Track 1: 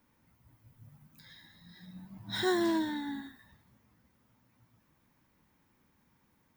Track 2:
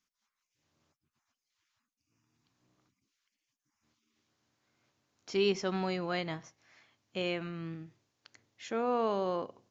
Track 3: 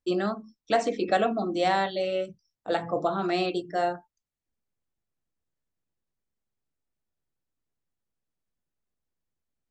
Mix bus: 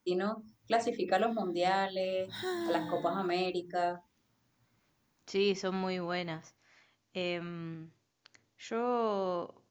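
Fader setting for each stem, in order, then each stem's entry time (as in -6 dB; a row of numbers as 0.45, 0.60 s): -7.0, -1.0, -5.5 dB; 0.00, 0.00, 0.00 s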